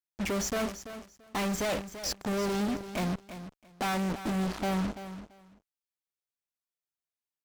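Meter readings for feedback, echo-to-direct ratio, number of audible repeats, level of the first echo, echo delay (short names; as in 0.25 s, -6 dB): 18%, -12.0 dB, 2, -12.0 dB, 0.337 s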